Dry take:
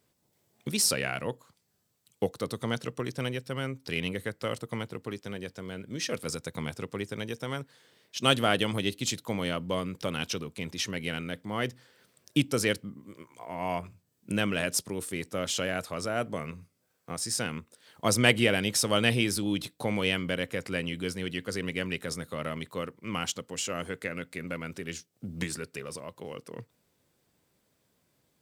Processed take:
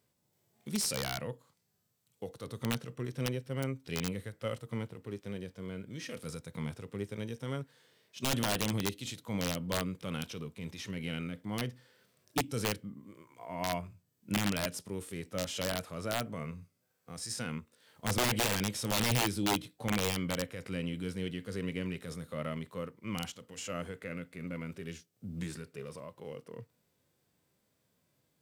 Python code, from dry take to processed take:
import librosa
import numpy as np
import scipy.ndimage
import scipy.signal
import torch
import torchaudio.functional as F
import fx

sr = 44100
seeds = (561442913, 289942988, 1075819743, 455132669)

y = fx.hpss(x, sr, part='percussive', gain_db=-14)
y = (np.mod(10.0 ** (22.5 / 20.0) * y + 1.0, 2.0) - 1.0) / 10.0 ** (22.5 / 20.0)